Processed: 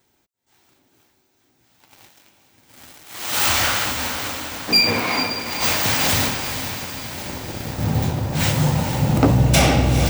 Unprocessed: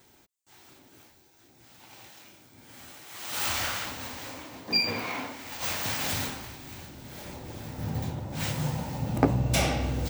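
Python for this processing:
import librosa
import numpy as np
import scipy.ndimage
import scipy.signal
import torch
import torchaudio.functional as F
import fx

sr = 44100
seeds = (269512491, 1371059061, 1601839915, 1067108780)

y = fx.leveller(x, sr, passes=3)
y = fx.echo_diffused(y, sr, ms=456, feedback_pct=57, wet_db=-9.0)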